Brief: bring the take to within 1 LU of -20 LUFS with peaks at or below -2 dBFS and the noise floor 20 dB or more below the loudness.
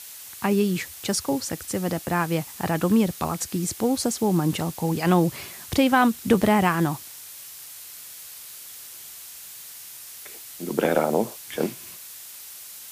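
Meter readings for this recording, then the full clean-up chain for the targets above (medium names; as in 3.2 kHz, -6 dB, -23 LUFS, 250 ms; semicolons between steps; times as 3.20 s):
noise floor -42 dBFS; noise floor target -44 dBFS; loudness -24.0 LUFS; peak level -6.5 dBFS; loudness target -20.0 LUFS
-> noise reduction 6 dB, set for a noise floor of -42 dBFS; trim +4 dB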